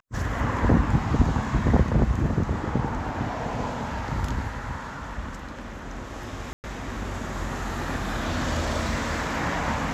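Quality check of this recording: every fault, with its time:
0:06.53–0:06.64: drop-out 109 ms

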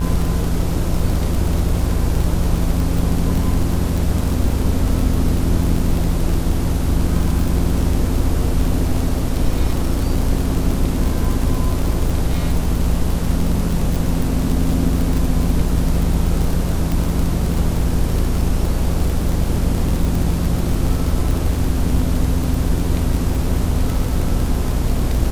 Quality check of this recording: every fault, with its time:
mains buzz 60 Hz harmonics 27 −22 dBFS
surface crackle 41 per second −19 dBFS
0:16.92: click

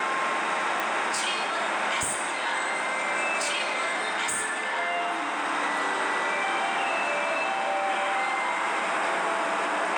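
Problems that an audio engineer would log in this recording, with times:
0:00.80: click

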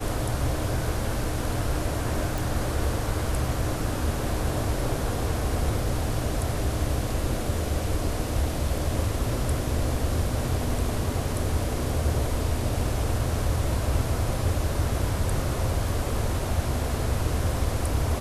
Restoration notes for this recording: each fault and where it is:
0:02.38: click

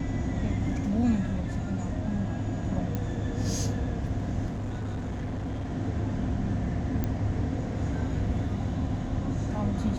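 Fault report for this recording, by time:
0:02.95: click −18 dBFS
0:04.49–0:05.70: clipping −29.5 dBFS
0:07.04: click −16 dBFS

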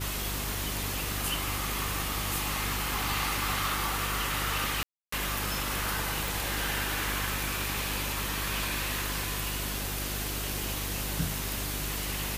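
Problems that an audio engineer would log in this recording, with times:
mains hum 50 Hz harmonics 8 −37 dBFS
0:04.83–0:05.12: drop-out 294 ms
0:06.28: click

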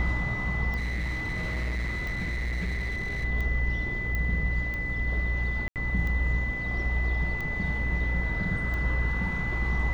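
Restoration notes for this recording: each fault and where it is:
mains buzz 60 Hz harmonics 32 −33 dBFS
scratch tick 45 rpm −23 dBFS
whistle 2,000 Hz −31 dBFS
0:00.76–0:03.25: clipping −27 dBFS
0:04.15: click −18 dBFS
0:05.68–0:05.76: drop-out 78 ms

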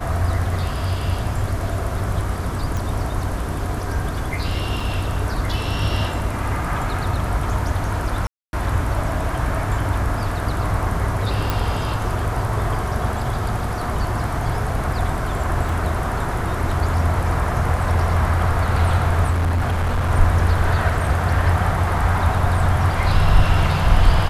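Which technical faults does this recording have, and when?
0:02.77: click
0:04.80: drop-out 3.5 ms
0:08.27–0:08.53: drop-out 261 ms
0:11.50: click
0:15.69: drop-out 2.3 ms
0:19.30–0:20.11: clipping −16 dBFS

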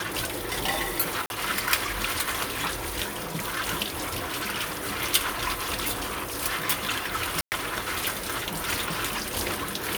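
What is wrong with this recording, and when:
0:01.26–0:01.30: drop-out 41 ms
0:03.90–0:04.50: clipping −26.5 dBFS
0:07.41–0:07.52: drop-out 109 ms

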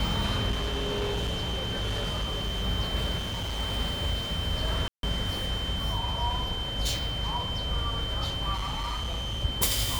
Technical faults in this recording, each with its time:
whistle 3,100 Hz −33 dBFS
0:00.50–0:02.64: clipping −26 dBFS
0:03.17–0:03.60: clipping −29 dBFS
0:04.88–0:05.03: drop-out 152 ms
0:08.53–0:09.45: clipping −28.5 dBFS

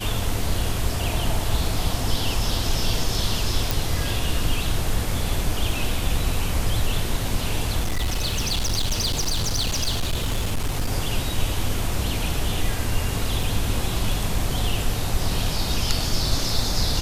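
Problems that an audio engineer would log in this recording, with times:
0:03.71: click
0:07.79–0:10.88: clipping −19 dBFS
0:13.43: drop-out 2.9 ms

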